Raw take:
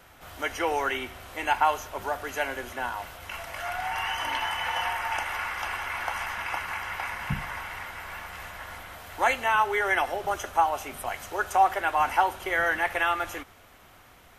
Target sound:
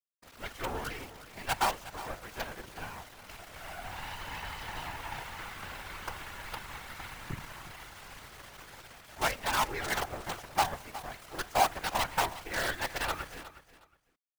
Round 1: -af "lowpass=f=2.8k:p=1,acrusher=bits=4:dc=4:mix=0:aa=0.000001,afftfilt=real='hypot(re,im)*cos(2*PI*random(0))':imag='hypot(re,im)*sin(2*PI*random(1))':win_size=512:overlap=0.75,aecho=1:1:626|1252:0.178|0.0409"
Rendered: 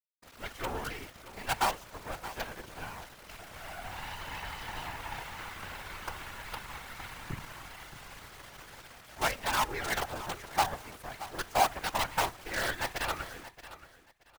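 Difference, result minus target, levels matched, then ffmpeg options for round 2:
echo 0.263 s late
-af "lowpass=f=2.8k:p=1,acrusher=bits=4:dc=4:mix=0:aa=0.000001,afftfilt=real='hypot(re,im)*cos(2*PI*random(0))':imag='hypot(re,im)*sin(2*PI*random(1))':win_size=512:overlap=0.75,aecho=1:1:363|726:0.178|0.0409"

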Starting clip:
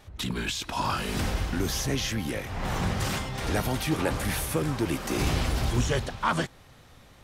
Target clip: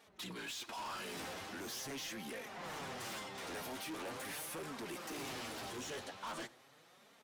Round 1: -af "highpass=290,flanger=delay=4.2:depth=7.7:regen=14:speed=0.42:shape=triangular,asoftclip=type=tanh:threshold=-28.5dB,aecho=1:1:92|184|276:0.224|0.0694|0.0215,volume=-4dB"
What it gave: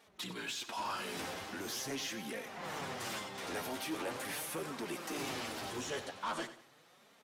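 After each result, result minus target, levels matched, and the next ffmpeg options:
echo-to-direct +9.5 dB; soft clip: distortion -6 dB
-af "highpass=290,flanger=delay=4.2:depth=7.7:regen=14:speed=0.42:shape=triangular,asoftclip=type=tanh:threshold=-28.5dB,aecho=1:1:92|184:0.075|0.0232,volume=-4dB"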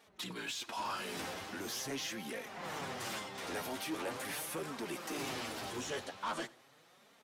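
soft clip: distortion -6 dB
-af "highpass=290,flanger=delay=4.2:depth=7.7:regen=14:speed=0.42:shape=triangular,asoftclip=type=tanh:threshold=-37dB,aecho=1:1:92|184:0.075|0.0232,volume=-4dB"

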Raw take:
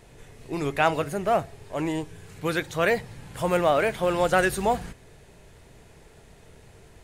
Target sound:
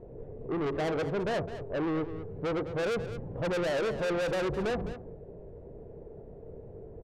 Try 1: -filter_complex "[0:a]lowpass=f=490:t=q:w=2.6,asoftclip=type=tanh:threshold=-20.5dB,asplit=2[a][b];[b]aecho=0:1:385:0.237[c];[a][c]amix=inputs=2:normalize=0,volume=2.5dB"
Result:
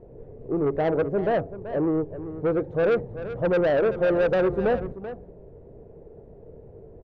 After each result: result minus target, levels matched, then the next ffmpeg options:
echo 0.175 s late; soft clip: distortion -6 dB
-filter_complex "[0:a]lowpass=f=490:t=q:w=2.6,asoftclip=type=tanh:threshold=-20.5dB,asplit=2[a][b];[b]aecho=0:1:210:0.237[c];[a][c]amix=inputs=2:normalize=0,volume=2.5dB"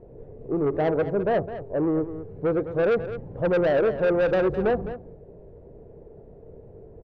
soft clip: distortion -6 dB
-filter_complex "[0:a]lowpass=f=490:t=q:w=2.6,asoftclip=type=tanh:threshold=-31dB,asplit=2[a][b];[b]aecho=0:1:210:0.237[c];[a][c]amix=inputs=2:normalize=0,volume=2.5dB"

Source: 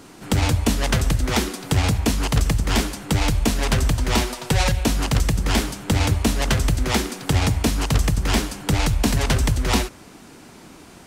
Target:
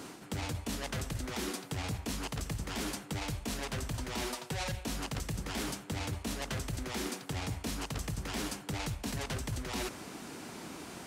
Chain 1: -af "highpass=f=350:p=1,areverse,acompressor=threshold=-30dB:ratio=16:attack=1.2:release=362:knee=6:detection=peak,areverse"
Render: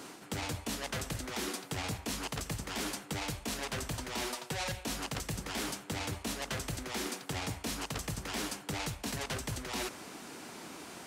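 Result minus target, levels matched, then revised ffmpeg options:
125 Hz band -3.0 dB
-af "highpass=f=130:p=1,areverse,acompressor=threshold=-30dB:ratio=16:attack=1.2:release=362:knee=6:detection=peak,areverse"

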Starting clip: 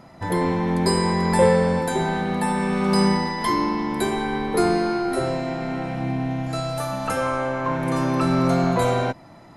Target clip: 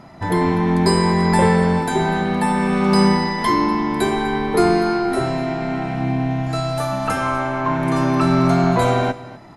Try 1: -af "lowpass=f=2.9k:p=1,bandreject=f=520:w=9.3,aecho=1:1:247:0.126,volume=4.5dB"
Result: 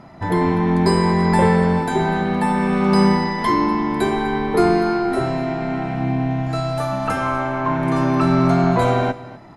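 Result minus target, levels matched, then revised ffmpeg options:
8000 Hz band -5.0 dB
-af "lowpass=f=6.7k:p=1,bandreject=f=520:w=9.3,aecho=1:1:247:0.126,volume=4.5dB"

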